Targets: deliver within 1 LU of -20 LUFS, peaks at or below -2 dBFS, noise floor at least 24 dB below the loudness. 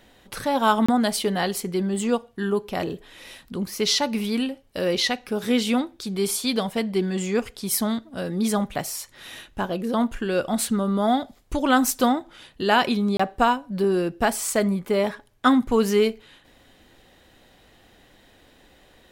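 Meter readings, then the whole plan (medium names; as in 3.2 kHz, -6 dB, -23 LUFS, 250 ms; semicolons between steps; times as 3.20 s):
dropouts 2; longest dropout 25 ms; loudness -23.5 LUFS; peak level -4.5 dBFS; loudness target -20.0 LUFS
-> interpolate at 0.86/13.17 s, 25 ms; trim +3.5 dB; peak limiter -2 dBFS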